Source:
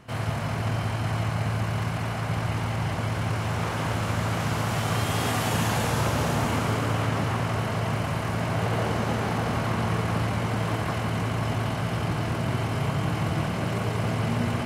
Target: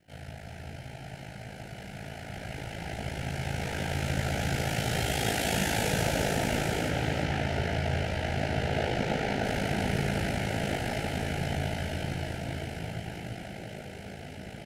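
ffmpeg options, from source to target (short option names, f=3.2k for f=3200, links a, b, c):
-filter_complex "[0:a]asettb=1/sr,asplit=3[a][b][c];[a]atrim=end=6.894[d];[b]atrim=start=6.89:end=9.44,asetpts=PTS-STARTPTS,afade=t=in:d=0.004:c=qsin,afade=t=out:st=2.546:d=0.004:c=qsin,acrossover=split=6300[e][f];[f]acompressor=threshold=-59dB:ratio=4:attack=1:release=60[g];[e][g]amix=inputs=2:normalize=0[h];[c]atrim=start=9.436[i];[d][h]acrossfade=d=0.004:c1=hsin:c2=qsin[j];[j][i]acrossfade=d=0.004:c1=qsin:c2=hsin,equalizer=f=160:w=0.5:g=-4,dynaudnorm=f=360:g=17:m=14.5dB,flanger=delay=19.5:depth=3.9:speed=0.25,acrusher=bits=11:mix=0:aa=0.000001,aeval=exprs='val(0)*sin(2*PI*27*n/s)':c=same,asuperstop=centerf=1100:order=4:qfactor=1.8,aecho=1:1:342:0.355,volume=-6.5dB"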